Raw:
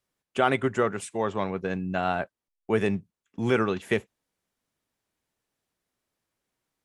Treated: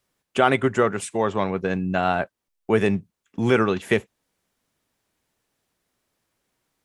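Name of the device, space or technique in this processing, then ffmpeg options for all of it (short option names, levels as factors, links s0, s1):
parallel compression: -filter_complex "[0:a]asplit=2[s0][s1];[s1]acompressor=threshold=0.0158:ratio=6,volume=0.501[s2];[s0][s2]amix=inputs=2:normalize=0,volume=1.58"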